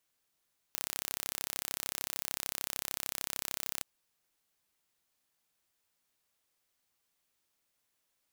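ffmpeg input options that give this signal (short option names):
-f lavfi -i "aevalsrc='0.398*eq(mod(n,1324),0)':d=3.08:s=44100"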